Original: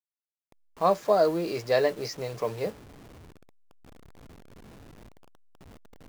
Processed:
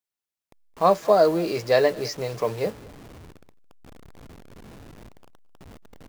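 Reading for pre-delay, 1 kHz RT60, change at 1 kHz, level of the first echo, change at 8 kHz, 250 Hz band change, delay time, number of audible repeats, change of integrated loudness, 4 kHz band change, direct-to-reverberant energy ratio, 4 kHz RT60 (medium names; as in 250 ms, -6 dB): no reverb, no reverb, +4.5 dB, -23.5 dB, +4.5 dB, +4.5 dB, 217 ms, 1, +4.5 dB, +4.5 dB, no reverb, no reverb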